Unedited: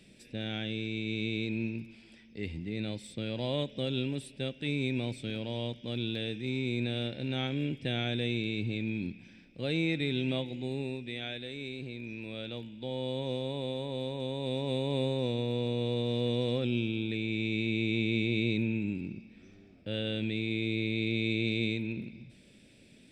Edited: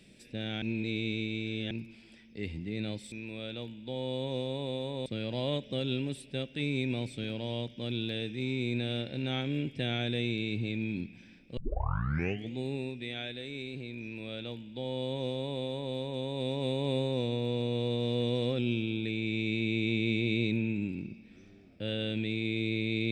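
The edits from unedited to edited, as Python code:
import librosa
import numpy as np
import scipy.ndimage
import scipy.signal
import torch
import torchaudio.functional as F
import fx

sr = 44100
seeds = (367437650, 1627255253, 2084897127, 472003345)

y = fx.edit(x, sr, fx.reverse_span(start_s=0.62, length_s=1.09),
    fx.tape_start(start_s=9.63, length_s=0.98),
    fx.duplicate(start_s=12.07, length_s=1.94, to_s=3.12), tone=tone)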